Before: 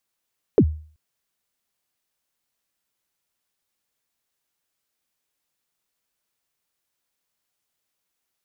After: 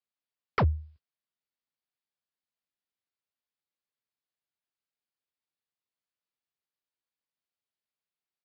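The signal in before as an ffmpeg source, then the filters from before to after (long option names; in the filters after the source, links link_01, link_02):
-f lavfi -i "aevalsrc='0.422*pow(10,-3*t/0.44)*sin(2*PI*(500*0.065/log(77/500)*(exp(log(77/500)*min(t,0.065)/0.065)-1)+77*max(t-0.065,0)))':duration=0.38:sample_rate=44100"
-af "highpass=frequency=60:width=0.5412,highpass=frequency=60:width=1.3066,agate=range=-14dB:threshold=-52dB:ratio=16:detection=peak,aresample=11025,aeval=exprs='0.133*(abs(mod(val(0)/0.133+3,4)-2)-1)':channel_layout=same,aresample=44100"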